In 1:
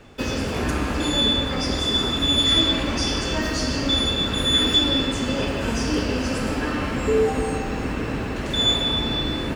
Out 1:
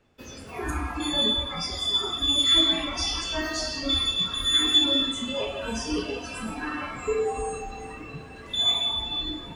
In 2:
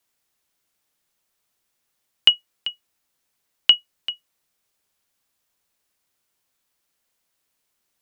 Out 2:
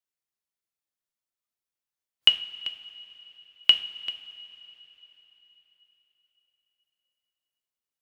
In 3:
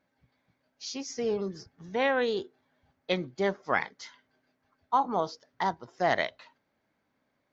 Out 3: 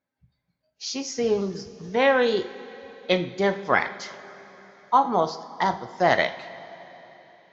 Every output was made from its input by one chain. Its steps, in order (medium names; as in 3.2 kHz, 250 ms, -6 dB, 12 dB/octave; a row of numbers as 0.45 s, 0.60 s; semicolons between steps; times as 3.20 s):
spectral noise reduction 16 dB; two-slope reverb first 0.44 s, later 4.1 s, from -16 dB, DRR 7.5 dB; normalise loudness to -24 LUFS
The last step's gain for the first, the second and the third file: -2.5 dB, -3.0 dB, +6.0 dB